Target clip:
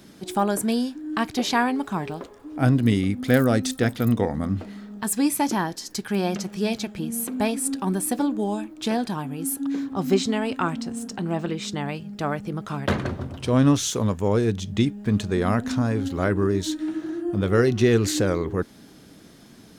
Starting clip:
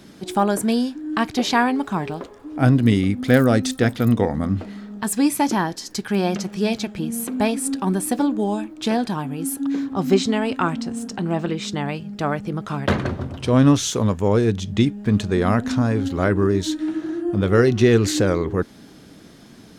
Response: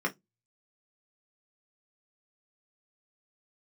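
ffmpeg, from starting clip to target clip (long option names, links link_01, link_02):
-af "highshelf=frequency=9700:gain=7,volume=-3.5dB"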